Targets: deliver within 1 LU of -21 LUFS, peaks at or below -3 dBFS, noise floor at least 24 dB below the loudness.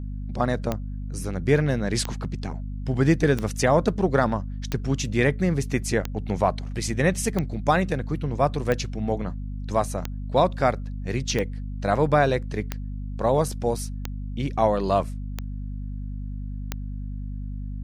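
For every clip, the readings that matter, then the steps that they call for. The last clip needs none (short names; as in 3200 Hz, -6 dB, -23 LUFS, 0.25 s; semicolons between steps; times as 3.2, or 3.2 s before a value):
clicks 13; hum 50 Hz; harmonics up to 250 Hz; hum level -29 dBFS; loudness -25.5 LUFS; peak -7.0 dBFS; loudness target -21.0 LUFS
-> de-click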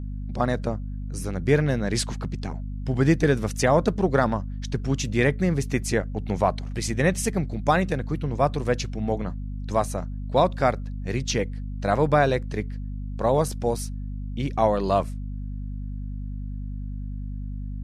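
clicks 0; hum 50 Hz; harmonics up to 250 Hz; hum level -29 dBFS
-> de-hum 50 Hz, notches 5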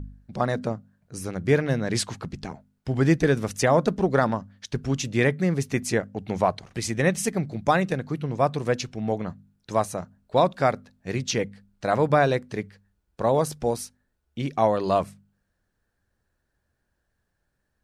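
hum none; loudness -25.0 LUFS; peak -7.5 dBFS; loudness target -21.0 LUFS
-> gain +4 dB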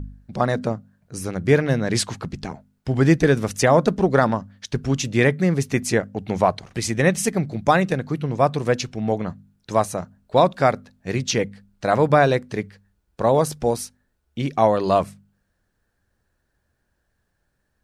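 loudness -21.0 LUFS; peak -3.5 dBFS; noise floor -72 dBFS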